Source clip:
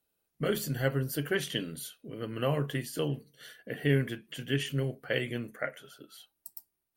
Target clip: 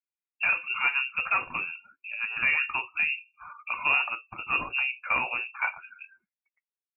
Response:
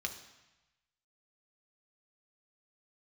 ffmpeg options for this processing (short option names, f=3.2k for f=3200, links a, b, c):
-filter_complex "[0:a]asplit=2[a][b];[b]highpass=f=720:p=1,volume=18dB,asoftclip=type=tanh:threshold=-13dB[c];[a][c]amix=inputs=2:normalize=0,lowpass=f=1.8k:p=1,volume=-6dB,lowpass=f=2.5k:t=q:w=0.5098,lowpass=f=2.5k:t=q:w=0.6013,lowpass=f=2.5k:t=q:w=0.9,lowpass=f=2.5k:t=q:w=2.563,afreqshift=-2900,afftdn=nr=28:nf=-46"